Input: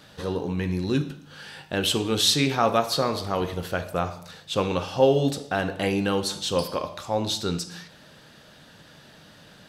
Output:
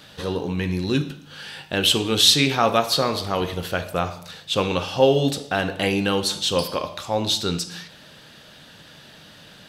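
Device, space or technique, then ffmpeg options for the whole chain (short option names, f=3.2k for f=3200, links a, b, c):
presence and air boost: -af "equalizer=f=3.1k:t=o:w=1.2:g=5,highshelf=f=10k:g=4.5,volume=2dB"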